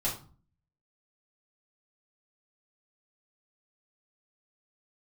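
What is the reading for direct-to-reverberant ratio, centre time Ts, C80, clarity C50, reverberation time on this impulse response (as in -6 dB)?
-7.0 dB, 25 ms, 13.5 dB, 8.0 dB, 0.40 s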